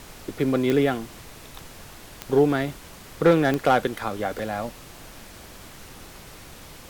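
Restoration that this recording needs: clip repair -10.5 dBFS; de-click; interpolate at 4.39, 2.3 ms; noise print and reduce 25 dB

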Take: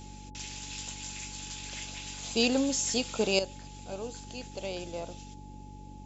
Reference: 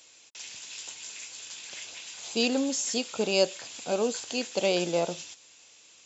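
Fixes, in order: de-hum 48 Hz, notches 6; notch 850 Hz, Q 30; noise print and reduce 10 dB; gain correction +11.5 dB, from 3.39

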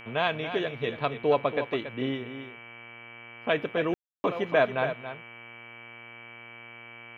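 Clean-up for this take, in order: de-hum 117.4 Hz, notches 27; notch 2300 Hz, Q 30; room tone fill 3.94–4.24; inverse comb 0.279 s -10 dB

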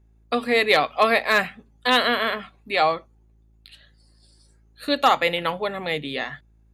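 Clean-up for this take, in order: clip repair -6.5 dBFS; de-hum 54.6 Hz, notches 7

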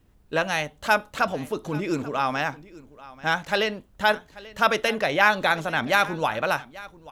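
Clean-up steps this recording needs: inverse comb 0.837 s -19.5 dB

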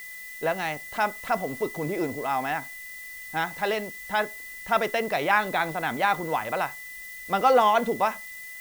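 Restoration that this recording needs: notch 2000 Hz, Q 30; denoiser 30 dB, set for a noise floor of -41 dBFS

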